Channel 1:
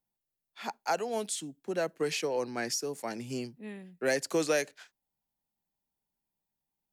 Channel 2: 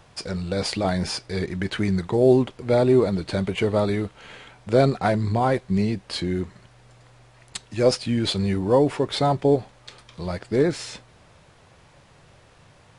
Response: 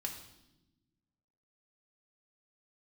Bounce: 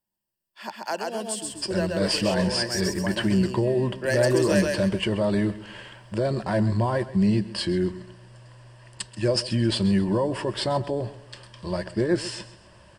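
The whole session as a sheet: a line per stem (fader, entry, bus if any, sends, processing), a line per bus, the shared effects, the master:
+1.0 dB, 0.00 s, no send, echo send -3 dB, dry
-0.5 dB, 1.45 s, no send, echo send -16.5 dB, limiter -16 dBFS, peak gain reduction 10.5 dB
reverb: off
echo: feedback echo 0.132 s, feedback 35%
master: ripple EQ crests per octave 1.3, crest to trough 10 dB

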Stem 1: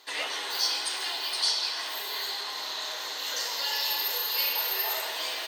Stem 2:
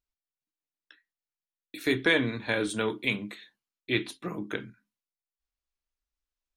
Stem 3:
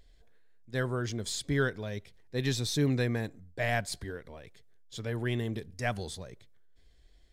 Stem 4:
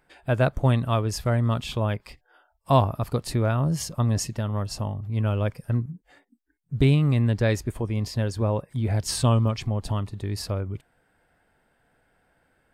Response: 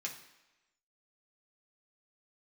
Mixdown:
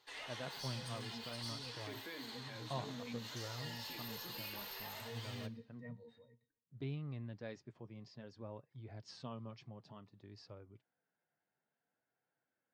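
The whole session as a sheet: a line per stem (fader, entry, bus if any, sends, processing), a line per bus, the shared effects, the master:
-9.0 dB, 0.00 s, bus A, send -11.5 dB, tube stage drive 23 dB, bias 0.5
-17.0 dB, 0.00 s, bus A, no send, dry
-3.0 dB, 0.00 s, bus A, send -18 dB, Bessel high-pass 160 Hz, order 8; octave resonator A#, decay 0.14 s
-19.0 dB, 0.00 s, no bus, no send, elliptic band-pass 120–5400 Hz
bus A: 0.0 dB, high shelf 5000 Hz -8 dB; limiter -35 dBFS, peak gain reduction 6.5 dB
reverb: on, RT60 1.0 s, pre-delay 3 ms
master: flange 0.57 Hz, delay 2.1 ms, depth 3.9 ms, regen -54%

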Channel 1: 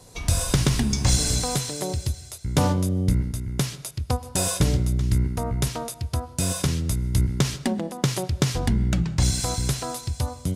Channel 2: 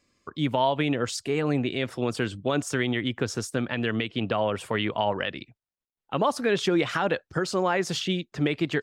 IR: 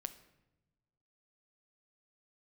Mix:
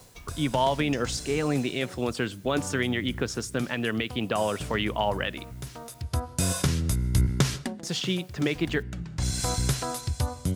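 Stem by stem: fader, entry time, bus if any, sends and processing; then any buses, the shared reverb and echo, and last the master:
-2.0 dB, 0.00 s, send -18.5 dB, bell 1500 Hz +3.5 dB; auto duck -20 dB, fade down 0.25 s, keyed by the second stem
-2.0 dB, 0.00 s, muted 6.02–7.83, send -9 dB, low shelf 270 Hz -9 dB; requantised 10-bit, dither triangular; bell 160 Hz +6 dB 1.7 oct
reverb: on, pre-delay 7 ms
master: dry

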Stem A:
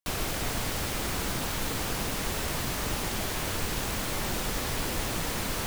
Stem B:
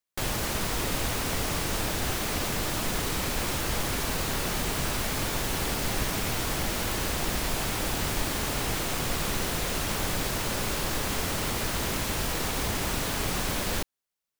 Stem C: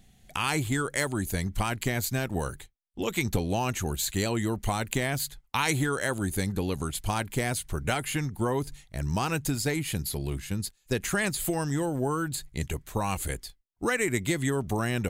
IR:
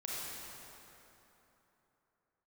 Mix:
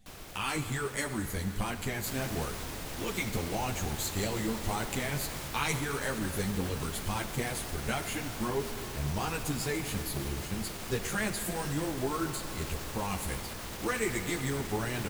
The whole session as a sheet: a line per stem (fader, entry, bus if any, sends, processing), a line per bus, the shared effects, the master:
-16.0 dB, 0.00 s, no send, dry
-10.0 dB, 1.90 s, no send, limiter -20.5 dBFS, peak gain reduction 6.5 dB
-4.0 dB, 0.00 s, send -8.5 dB, ensemble effect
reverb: on, RT60 3.3 s, pre-delay 28 ms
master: dry

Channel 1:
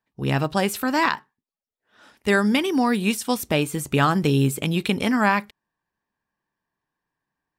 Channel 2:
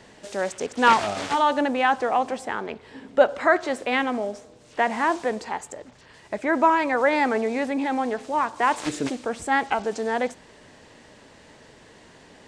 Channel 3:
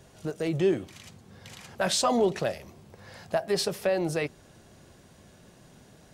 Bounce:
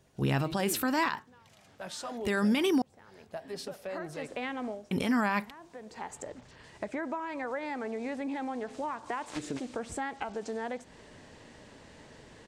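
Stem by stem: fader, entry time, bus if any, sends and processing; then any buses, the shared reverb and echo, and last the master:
-1.0 dB, 0.00 s, muted 2.82–4.91, no send, dry
3.75 s -13.5 dB -> 4.45 s -4 dB, 0.50 s, no send, low shelf 230 Hz +5.5 dB; compressor 10:1, threshold -28 dBFS, peak gain reduction 18.5 dB; auto duck -16 dB, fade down 0.20 s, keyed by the first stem
-13.0 dB, 0.00 s, no send, vocal rider within 4 dB 2 s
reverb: off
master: limiter -19 dBFS, peak gain reduction 11 dB

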